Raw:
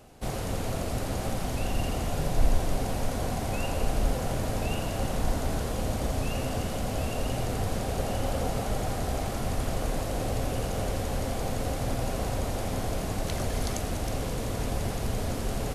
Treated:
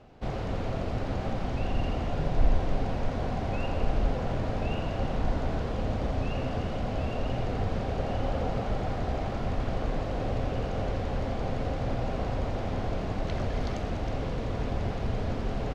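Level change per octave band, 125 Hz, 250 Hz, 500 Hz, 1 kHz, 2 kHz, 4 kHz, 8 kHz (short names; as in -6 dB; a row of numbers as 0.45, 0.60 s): 0.0, 0.0, -0.5, -0.5, -2.0, -5.5, -17.5 dB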